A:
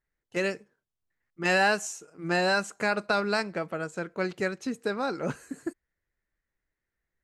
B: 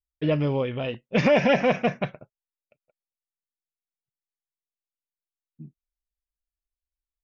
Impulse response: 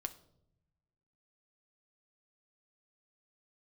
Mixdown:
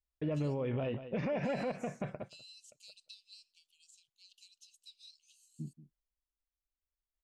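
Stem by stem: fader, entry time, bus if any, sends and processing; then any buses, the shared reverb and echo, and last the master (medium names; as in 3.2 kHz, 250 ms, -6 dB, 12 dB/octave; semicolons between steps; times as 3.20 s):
-8.0 dB, 0.00 s, no send, no echo send, steep high-pass 2.8 kHz 96 dB/octave; compression 6:1, threshold -41 dBFS, peak gain reduction 9.5 dB
+2.0 dB, 0.00 s, no send, echo send -17 dB, treble shelf 2.3 kHz -12 dB; band-stop 3.1 kHz, Q 22; compression, threshold -27 dBFS, peak gain reduction 10.5 dB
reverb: none
echo: delay 182 ms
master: treble shelf 9 kHz -5 dB; random-step tremolo; peak limiter -27.5 dBFS, peak gain reduction 10 dB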